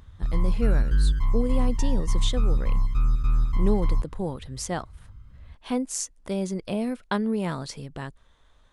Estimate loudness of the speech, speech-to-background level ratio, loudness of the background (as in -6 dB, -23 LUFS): -30.5 LUFS, -3.5 dB, -27.0 LUFS